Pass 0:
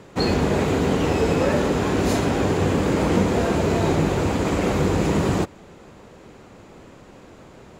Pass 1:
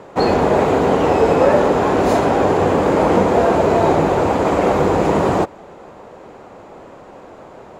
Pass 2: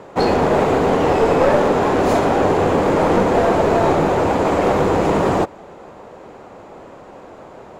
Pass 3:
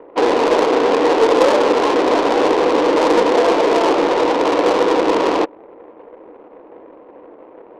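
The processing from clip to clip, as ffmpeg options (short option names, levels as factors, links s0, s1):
-af "equalizer=f=740:w=0.55:g=14,volume=0.75"
-af "aeval=exprs='clip(val(0),-1,0.224)':c=same"
-af "highpass=f=240:w=0.5412,highpass=f=240:w=1.3066,equalizer=f=310:t=q:w=4:g=9,equalizer=f=480:t=q:w=4:g=9,equalizer=f=1000:t=q:w=4:g=7,lowpass=f=2700:w=0.5412,lowpass=f=2700:w=1.3066,adynamicsmooth=sensitivity=0.5:basefreq=580,crystalizer=i=7.5:c=0,volume=0.531"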